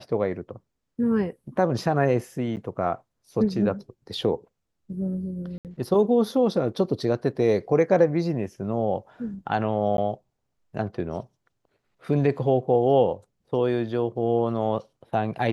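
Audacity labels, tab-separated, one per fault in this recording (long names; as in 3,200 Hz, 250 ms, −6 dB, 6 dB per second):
2.560000	2.570000	drop-out 9 ms
5.580000	5.650000	drop-out 68 ms
9.970000	9.980000	drop-out 12 ms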